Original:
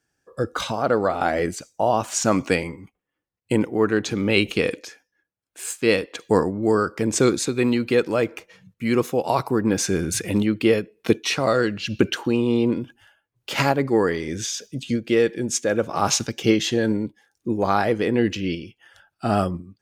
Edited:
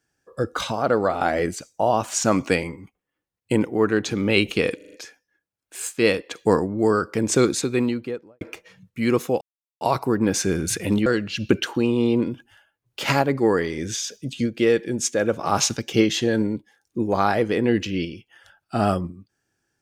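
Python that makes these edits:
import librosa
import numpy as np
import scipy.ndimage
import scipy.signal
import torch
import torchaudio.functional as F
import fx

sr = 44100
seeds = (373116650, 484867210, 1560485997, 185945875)

y = fx.studio_fade_out(x, sr, start_s=7.47, length_s=0.78)
y = fx.edit(y, sr, fx.stutter(start_s=4.76, slice_s=0.04, count=5),
    fx.insert_silence(at_s=9.25, length_s=0.4),
    fx.cut(start_s=10.5, length_s=1.06), tone=tone)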